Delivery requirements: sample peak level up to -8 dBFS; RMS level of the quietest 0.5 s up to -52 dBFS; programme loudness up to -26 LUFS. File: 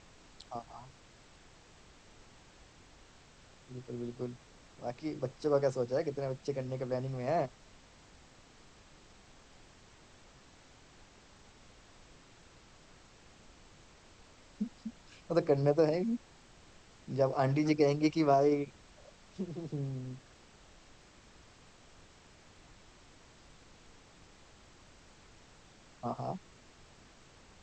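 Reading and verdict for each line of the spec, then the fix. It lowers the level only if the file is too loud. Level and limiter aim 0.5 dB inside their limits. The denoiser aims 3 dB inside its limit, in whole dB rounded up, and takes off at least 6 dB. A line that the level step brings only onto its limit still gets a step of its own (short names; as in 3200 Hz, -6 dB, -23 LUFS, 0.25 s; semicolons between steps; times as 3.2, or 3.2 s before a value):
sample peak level -15.0 dBFS: OK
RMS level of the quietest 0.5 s -59 dBFS: OK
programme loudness -33.5 LUFS: OK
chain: none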